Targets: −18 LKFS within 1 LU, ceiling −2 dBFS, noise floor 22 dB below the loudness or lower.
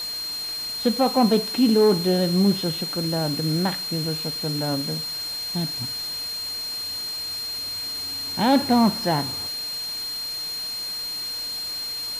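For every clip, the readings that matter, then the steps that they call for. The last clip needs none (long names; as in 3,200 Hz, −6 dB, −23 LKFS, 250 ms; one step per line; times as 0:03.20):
interfering tone 4,200 Hz; level of the tone −28 dBFS; background noise floor −31 dBFS; target noise floor −46 dBFS; integrated loudness −23.5 LKFS; sample peak −7.5 dBFS; target loudness −18.0 LKFS
→ notch filter 4,200 Hz, Q 30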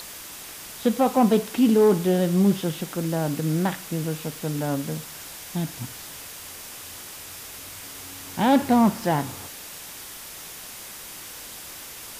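interfering tone none found; background noise floor −40 dBFS; target noise floor −45 dBFS
→ broadband denoise 6 dB, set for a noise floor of −40 dBFS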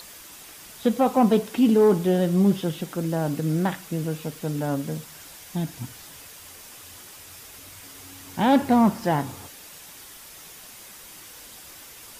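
background noise floor −45 dBFS; integrated loudness −23.0 LKFS; sample peak −8.5 dBFS; target loudness −18.0 LKFS
→ level +5 dB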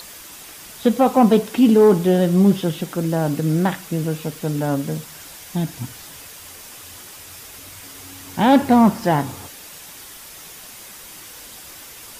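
integrated loudness −18.0 LKFS; sample peak −3.5 dBFS; background noise floor −40 dBFS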